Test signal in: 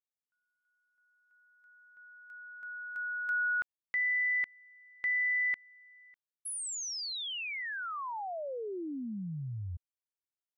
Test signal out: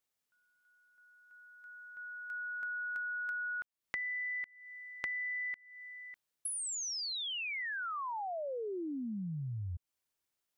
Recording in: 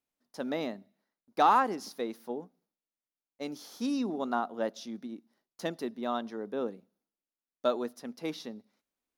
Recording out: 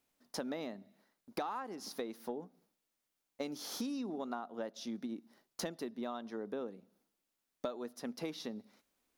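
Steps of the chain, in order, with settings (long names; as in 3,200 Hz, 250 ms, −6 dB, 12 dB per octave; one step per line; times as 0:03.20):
downward compressor 12 to 1, threshold −46 dBFS
level +9 dB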